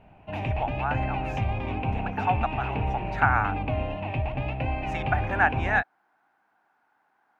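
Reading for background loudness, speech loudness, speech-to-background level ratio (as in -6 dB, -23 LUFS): -30.0 LUFS, -28.5 LUFS, 1.5 dB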